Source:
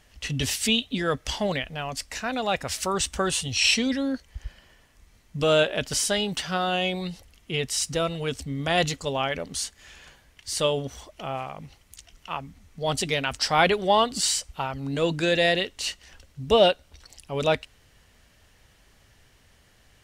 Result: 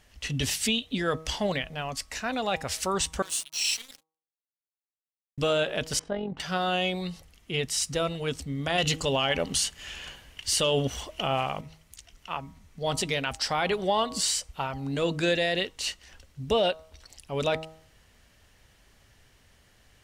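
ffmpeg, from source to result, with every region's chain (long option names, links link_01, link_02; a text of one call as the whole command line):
ffmpeg -i in.wav -filter_complex "[0:a]asettb=1/sr,asplit=3[link_01][link_02][link_03];[link_01]atrim=end=3.224[link_04];[link_02]atrim=start=3.22:end=5.38,asetpts=PTS-STARTPTS,afade=type=in:duration=0.004:curve=qsin,afade=type=out:start_time=2.156:duration=0.004:curve=qsin,aderivative,acrusher=bits=5:mix=0:aa=0.5[link_05];[link_03]atrim=start=5.376[link_06];[link_04][link_05]acrossfade=duration=0.004:curve1=hsin:curve2=qsin[link_07];[link_07][link_06]acrossfade=duration=0.004:curve1=qsin:curve2=hsin,asettb=1/sr,asplit=3[link_08][link_09][link_10];[link_08]atrim=end=5.994[link_11];[link_09]atrim=start=5.99:end=6.4,asetpts=PTS-STARTPTS,afade=type=in:duration=0.004:curve=qsin,afade=type=out:start_time=0.406:duration=0.004:curve=qsin,lowpass=1100,tremolo=f=45:d=0.571[link_12];[link_10]atrim=start=6.396[link_13];[link_11][link_12]acrossfade=duration=0.004:curve1=hsin:curve2=qsin[link_14];[link_14][link_13]acrossfade=duration=0.004:curve1=qsin:curve2=hsin,asettb=1/sr,asplit=3[link_15][link_16][link_17];[link_15]atrim=end=8.784[link_18];[link_16]atrim=start=8.78:end=11.61,asetpts=PTS-STARTPTS,afade=type=in:duration=0.004:curve=qsin,afade=type=out:start_time=2.826:duration=0.004:curve=qsin,equalizer=frequency=2900:width_type=o:width=0.23:gain=9.5,acontrast=82[link_19];[link_17]atrim=start=11.606[link_20];[link_18][link_19]acrossfade=duration=0.004:curve1=hsin:curve2=qsin[link_21];[link_21][link_20]acrossfade=duration=0.004:curve1=qsin:curve2=hsin,bandreject=frequency=159.2:width_type=h:width=4,bandreject=frequency=318.4:width_type=h:width=4,bandreject=frequency=477.6:width_type=h:width=4,bandreject=frequency=636.8:width_type=h:width=4,bandreject=frequency=796:width_type=h:width=4,bandreject=frequency=955.2:width_type=h:width=4,bandreject=frequency=1114.4:width_type=h:width=4,bandreject=frequency=1273.6:width_type=h:width=4,alimiter=limit=-14dB:level=0:latency=1:release=91,volume=-1.5dB" out.wav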